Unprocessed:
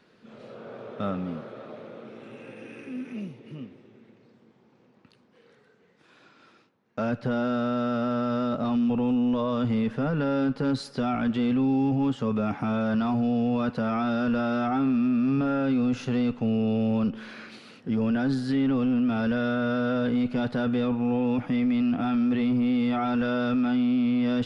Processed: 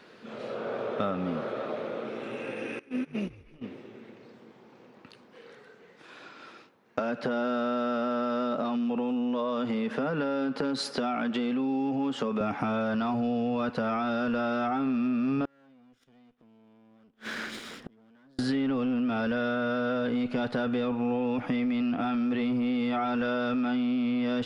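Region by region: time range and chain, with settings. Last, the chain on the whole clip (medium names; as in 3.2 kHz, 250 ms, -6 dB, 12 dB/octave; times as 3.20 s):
2.79–3.64 s: gate -36 dBFS, range -21 dB + frequency-shifting echo 153 ms, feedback 54%, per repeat -100 Hz, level -19 dB
6.99–12.41 s: high-pass 160 Hz 24 dB/octave + compression 2.5:1, threshold -29 dBFS
15.45–18.39 s: comb filter that takes the minimum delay 0.56 ms + inverted gate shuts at -30 dBFS, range -39 dB
whole clip: tone controls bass -8 dB, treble -2 dB; compression 6:1, threshold -35 dBFS; trim +9 dB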